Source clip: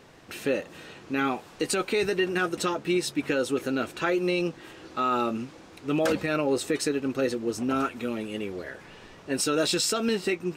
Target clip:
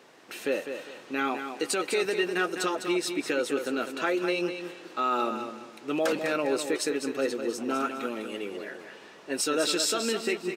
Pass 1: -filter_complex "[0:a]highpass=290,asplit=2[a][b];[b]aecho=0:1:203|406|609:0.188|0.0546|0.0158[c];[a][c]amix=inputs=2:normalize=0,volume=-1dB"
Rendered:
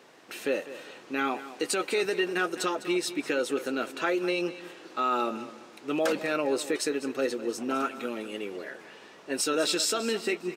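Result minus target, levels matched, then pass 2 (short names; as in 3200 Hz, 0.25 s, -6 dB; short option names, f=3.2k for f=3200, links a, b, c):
echo-to-direct -6.5 dB
-filter_complex "[0:a]highpass=290,asplit=2[a][b];[b]aecho=0:1:203|406|609:0.398|0.115|0.0335[c];[a][c]amix=inputs=2:normalize=0,volume=-1dB"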